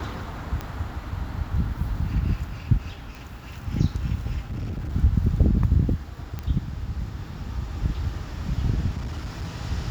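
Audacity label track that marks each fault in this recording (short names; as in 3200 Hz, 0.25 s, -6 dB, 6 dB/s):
0.610000	0.610000	pop -17 dBFS
3.150000	3.150000	pop
4.500000	4.940000	clipped -27 dBFS
6.390000	6.390000	pop -18 dBFS
8.970000	9.540000	clipped -27 dBFS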